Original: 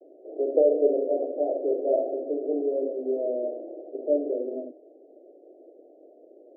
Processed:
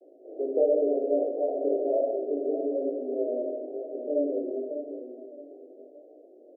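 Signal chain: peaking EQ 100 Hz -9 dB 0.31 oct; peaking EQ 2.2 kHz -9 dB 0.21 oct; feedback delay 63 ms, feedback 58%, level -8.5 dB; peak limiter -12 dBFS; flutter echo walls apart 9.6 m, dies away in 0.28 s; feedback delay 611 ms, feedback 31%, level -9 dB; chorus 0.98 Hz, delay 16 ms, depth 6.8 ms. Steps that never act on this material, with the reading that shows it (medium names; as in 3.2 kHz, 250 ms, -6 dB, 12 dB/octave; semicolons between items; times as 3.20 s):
peaking EQ 100 Hz: input has nothing below 240 Hz; peaking EQ 2.2 kHz: input has nothing above 760 Hz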